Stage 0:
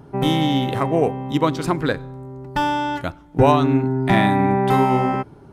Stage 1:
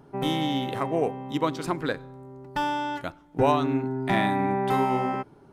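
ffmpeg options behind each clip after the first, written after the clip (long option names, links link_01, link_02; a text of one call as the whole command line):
ffmpeg -i in.wav -af "equalizer=frequency=63:width_type=o:width=2.4:gain=-9,volume=-6dB" out.wav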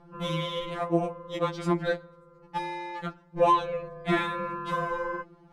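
ffmpeg -i in.wav -af "tremolo=f=240:d=0.71,adynamicsmooth=sensitivity=4.5:basefreq=6500,afftfilt=real='re*2.83*eq(mod(b,8),0)':imag='im*2.83*eq(mod(b,8),0)':win_size=2048:overlap=0.75,volume=4.5dB" out.wav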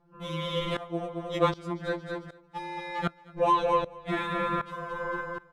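ffmpeg -i in.wav -filter_complex "[0:a]asplit=2[link_01][link_02];[link_02]aecho=0:1:223|446|669|892:0.316|0.133|0.0558|0.0234[link_03];[link_01][link_03]amix=inputs=2:normalize=0,aeval=exprs='val(0)*pow(10,-19*if(lt(mod(-1.3*n/s,1),2*abs(-1.3)/1000),1-mod(-1.3*n/s,1)/(2*abs(-1.3)/1000),(mod(-1.3*n/s,1)-2*abs(-1.3)/1000)/(1-2*abs(-1.3)/1000))/20)':channel_layout=same,volume=6.5dB" out.wav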